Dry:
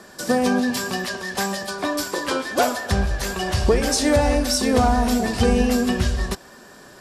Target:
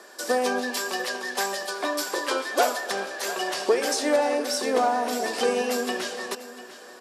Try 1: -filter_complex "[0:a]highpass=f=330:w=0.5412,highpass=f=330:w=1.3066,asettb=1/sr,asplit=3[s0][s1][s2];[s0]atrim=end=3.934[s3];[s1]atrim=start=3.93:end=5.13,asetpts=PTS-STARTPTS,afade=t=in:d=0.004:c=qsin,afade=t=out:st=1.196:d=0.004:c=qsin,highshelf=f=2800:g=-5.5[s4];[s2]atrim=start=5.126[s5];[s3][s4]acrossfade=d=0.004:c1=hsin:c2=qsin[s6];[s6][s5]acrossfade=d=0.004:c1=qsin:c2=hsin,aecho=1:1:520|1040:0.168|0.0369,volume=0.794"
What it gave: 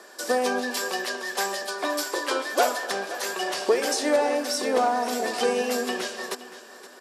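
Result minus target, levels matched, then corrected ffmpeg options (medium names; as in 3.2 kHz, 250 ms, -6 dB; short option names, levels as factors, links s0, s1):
echo 176 ms early
-filter_complex "[0:a]highpass=f=330:w=0.5412,highpass=f=330:w=1.3066,asettb=1/sr,asplit=3[s0][s1][s2];[s0]atrim=end=3.934[s3];[s1]atrim=start=3.93:end=5.13,asetpts=PTS-STARTPTS,afade=t=in:d=0.004:c=qsin,afade=t=out:st=1.196:d=0.004:c=qsin,highshelf=f=2800:g=-5.5[s4];[s2]atrim=start=5.126[s5];[s3][s4]acrossfade=d=0.004:c1=hsin:c2=qsin[s6];[s6][s5]acrossfade=d=0.004:c1=qsin:c2=hsin,aecho=1:1:696|1392:0.168|0.0369,volume=0.794"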